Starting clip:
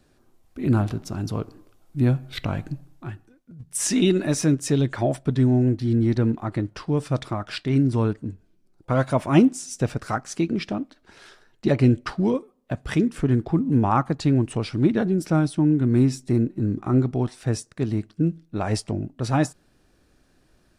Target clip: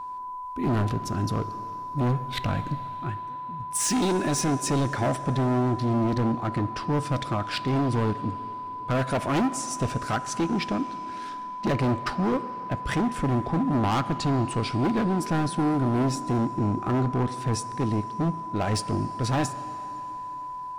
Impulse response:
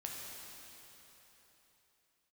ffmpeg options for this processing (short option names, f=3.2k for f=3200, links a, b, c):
-filter_complex "[0:a]volume=23dB,asoftclip=hard,volume=-23dB,aeval=exprs='val(0)+0.0178*sin(2*PI*1000*n/s)':c=same,asplit=2[a][b];[1:a]atrim=start_sample=2205,lowshelf=f=150:g=-8.5,highshelf=f=7.4k:g=-8.5[c];[b][c]afir=irnorm=-1:irlink=0,volume=-7.5dB[d];[a][d]amix=inputs=2:normalize=0"